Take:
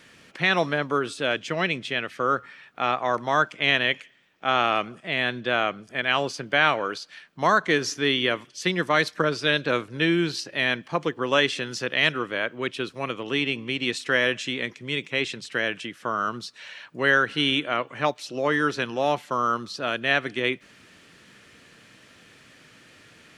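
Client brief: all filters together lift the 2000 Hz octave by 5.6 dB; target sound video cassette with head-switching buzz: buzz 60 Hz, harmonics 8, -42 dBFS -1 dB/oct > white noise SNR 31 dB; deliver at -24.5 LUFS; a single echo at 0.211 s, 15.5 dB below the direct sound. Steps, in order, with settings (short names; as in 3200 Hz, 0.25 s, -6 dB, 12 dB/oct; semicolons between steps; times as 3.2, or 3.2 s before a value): bell 2000 Hz +7 dB; echo 0.211 s -15.5 dB; buzz 60 Hz, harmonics 8, -42 dBFS -1 dB/oct; white noise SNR 31 dB; gain -3.5 dB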